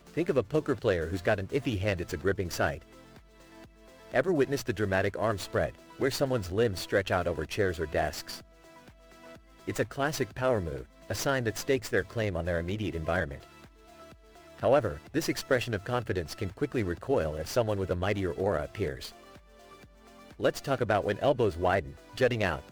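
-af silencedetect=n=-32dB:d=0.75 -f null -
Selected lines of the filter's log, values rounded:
silence_start: 2.75
silence_end: 4.14 | silence_duration: 1.39
silence_start: 8.36
silence_end: 9.68 | silence_duration: 1.32
silence_start: 13.35
silence_end: 14.63 | silence_duration: 1.28
silence_start: 19.06
silence_end: 20.40 | silence_duration: 1.34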